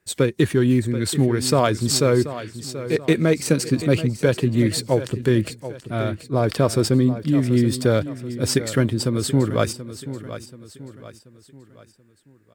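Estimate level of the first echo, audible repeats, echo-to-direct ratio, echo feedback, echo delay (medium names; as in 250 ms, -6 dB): -13.0 dB, 3, -12.0 dB, 42%, 732 ms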